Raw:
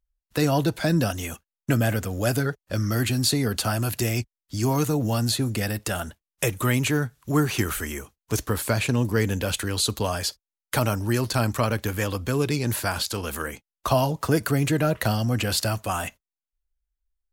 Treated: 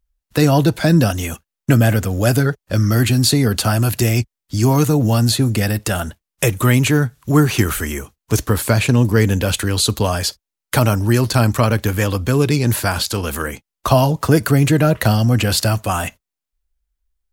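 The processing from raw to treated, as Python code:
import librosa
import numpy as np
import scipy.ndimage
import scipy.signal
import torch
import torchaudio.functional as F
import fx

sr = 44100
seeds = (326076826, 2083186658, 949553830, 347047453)

y = fx.peak_eq(x, sr, hz=110.0, db=3.5, octaves=2.7)
y = F.gain(torch.from_numpy(y), 6.5).numpy()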